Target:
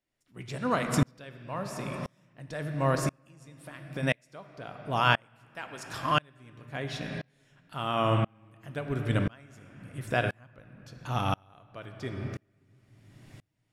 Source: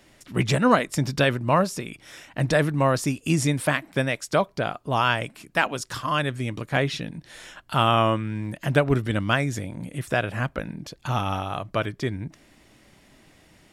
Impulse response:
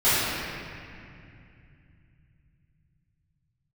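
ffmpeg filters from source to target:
-filter_complex "[0:a]asettb=1/sr,asplit=3[link_01][link_02][link_03];[link_01]atrim=end=2.954[link_04];[link_02]atrim=start=2.95:end=4.03,asetpts=PTS-STARTPTS,afade=type=in:duration=0.004:curve=qsin,afade=type=out:start_time=1.076:duration=0.004:curve=qsin,acompressor=threshold=-32dB:ratio=3[link_05];[link_03]atrim=start=4.026[link_06];[link_04][link_05]acrossfade=duration=0.004:curve1=hsin:curve2=qsin[link_07];[link_07][link_06]acrossfade=duration=0.004:curve1=qsin:curve2=hsin,asplit=2[link_08][link_09];[1:a]atrim=start_sample=2205[link_10];[link_09][link_10]afir=irnorm=-1:irlink=0,volume=-26.5dB[link_11];[link_08][link_11]amix=inputs=2:normalize=0,aeval=exprs='val(0)*pow(10,-34*if(lt(mod(-0.97*n/s,1),2*abs(-0.97)/1000),1-mod(-0.97*n/s,1)/(2*abs(-0.97)/1000),(mod(-0.97*n/s,1)-2*abs(-0.97)/1000)/(1-2*abs(-0.97)/1000))/20)':channel_layout=same"

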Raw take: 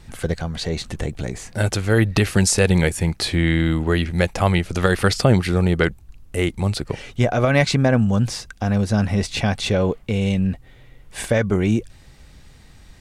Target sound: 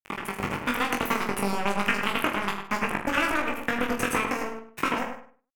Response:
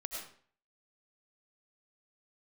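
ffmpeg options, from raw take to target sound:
-filter_complex "[0:a]highpass=48,acompressor=threshold=-23dB:ratio=10,equalizer=frequency=230:width_type=o:width=1.2:gain=-7,acrusher=bits=3:mix=0:aa=0.5,aresample=16000,aresample=44100,asetrate=103194,aresample=44100,highshelf=frequency=3200:width_type=q:width=3:gain=-8,asplit=2[link_01][link_02];[link_02]adelay=101,lowpass=frequency=1700:poles=1,volume=-5dB,asplit=2[link_03][link_04];[link_04]adelay=101,lowpass=frequency=1700:poles=1,volume=0.24,asplit=2[link_05][link_06];[link_06]adelay=101,lowpass=frequency=1700:poles=1,volume=0.24[link_07];[link_03][link_05][link_07]amix=inputs=3:normalize=0[link_08];[link_01][link_08]amix=inputs=2:normalize=0,dynaudnorm=framelen=150:gausssize=5:maxgain=6.5dB,asplit=2[link_09][link_10];[link_10]aecho=0:1:20|45|76.25|115.3|164.1:0.631|0.398|0.251|0.158|0.1[link_11];[link_09][link_11]amix=inputs=2:normalize=0,volume=-4dB"

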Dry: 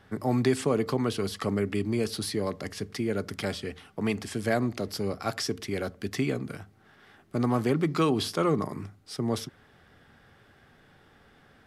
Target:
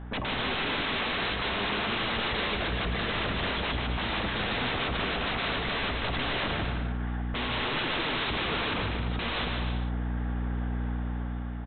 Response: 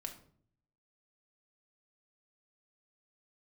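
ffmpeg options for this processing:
-filter_complex "[0:a]aeval=exprs='val(0)+0.00708*(sin(2*PI*60*n/s)+sin(2*PI*2*60*n/s)/2+sin(2*PI*3*60*n/s)/3+sin(2*PI*4*60*n/s)/4+sin(2*PI*5*60*n/s)/5)':channel_layout=same,agate=range=-20dB:threshold=-31dB:ratio=16:detection=peak,equalizer=frequency=890:width=1.7:gain=8.5,dynaudnorm=framelen=900:gausssize=3:maxgain=9dB,asoftclip=type=hard:threshold=-18dB,aemphasis=mode=reproduction:type=50kf,aresample=8000,aeval=exprs='0.0282*sin(PI/2*7.94*val(0)/0.0282)':channel_layout=same,aresample=44100,aecho=1:1:150|262.5|346.9|410.2|457.6:0.631|0.398|0.251|0.158|0.1,asplit=2[link_01][link_02];[1:a]atrim=start_sample=2205,lowpass=5000[link_03];[link_02][link_03]afir=irnorm=-1:irlink=0,volume=-6dB[link_04];[link_01][link_04]amix=inputs=2:normalize=0"

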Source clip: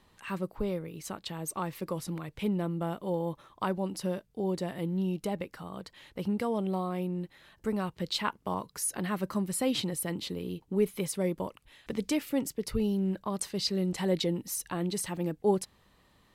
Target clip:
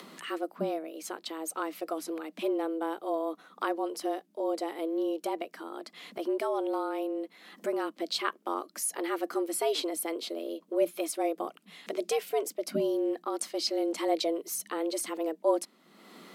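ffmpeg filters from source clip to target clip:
ffmpeg -i in.wav -af "afreqshift=160,acompressor=mode=upward:threshold=-37dB:ratio=2.5" out.wav

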